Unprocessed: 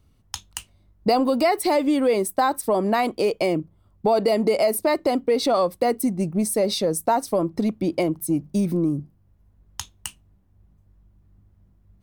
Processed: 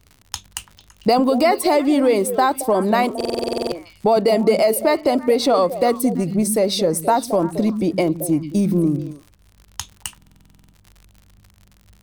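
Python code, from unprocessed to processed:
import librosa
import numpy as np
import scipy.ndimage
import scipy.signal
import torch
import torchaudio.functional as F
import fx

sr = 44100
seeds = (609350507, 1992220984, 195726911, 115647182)

y = fx.dmg_crackle(x, sr, seeds[0], per_s=78.0, level_db=-37.0)
y = fx.echo_stepped(y, sr, ms=112, hz=190.0, octaves=1.4, feedback_pct=70, wet_db=-6.5)
y = fx.buffer_glitch(y, sr, at_s=(3.16, 10.17), block=2048, repeats=11)
y = F.gain(torch.from_numpy(y), 3.5).numpy()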